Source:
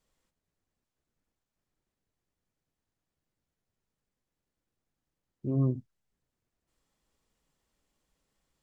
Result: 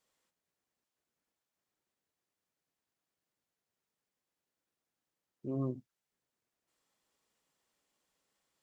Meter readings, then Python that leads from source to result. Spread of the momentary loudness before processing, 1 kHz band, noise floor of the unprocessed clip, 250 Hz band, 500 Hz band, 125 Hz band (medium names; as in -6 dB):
11 LU, -1.0 dB, under -85 dBFS, -6.5 dB, -3.5 dB, -11.0 dB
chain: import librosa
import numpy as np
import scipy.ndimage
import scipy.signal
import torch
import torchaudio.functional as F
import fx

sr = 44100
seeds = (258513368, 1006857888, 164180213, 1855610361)

y = fx.highpass(x, sr, hz=450.0, slope=6)